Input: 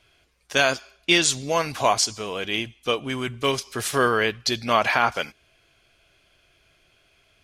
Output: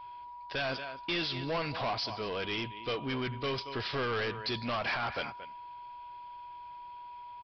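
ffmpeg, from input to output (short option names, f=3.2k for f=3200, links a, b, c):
-filter_complex "[0:a]asplit=2[a][b];[b]adelay=227.4,volume=-19dB,highshelf=f=4k:g=-5.12[c];[a][c]amix=inputs=2:normalize=0,aeval=exprs='val(0)+0.00891*sin(2*PI*970*n/s)':c=same,alimiter=limit=-11.5dB:level=0:latency=1:release=92,aresample=11025,asoftclip=type=tanh:threshold=-26.5dB,aresample=44100,volume=-2.5dB"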